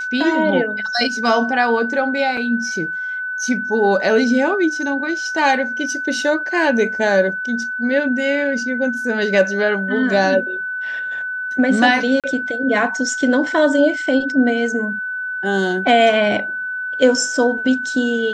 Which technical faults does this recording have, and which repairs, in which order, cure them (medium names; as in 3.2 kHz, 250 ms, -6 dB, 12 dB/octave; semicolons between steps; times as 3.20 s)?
whine 1.5 kHz -22 dBFS
2.37 s: dropout 3.3 ms
12.20–12.24 s: dropout 37 ms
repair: band-stop 1.5 kHz, Q 30; interpolate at 2.37 s, 3.3 ms; interpolate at 12.20 s, 37 ms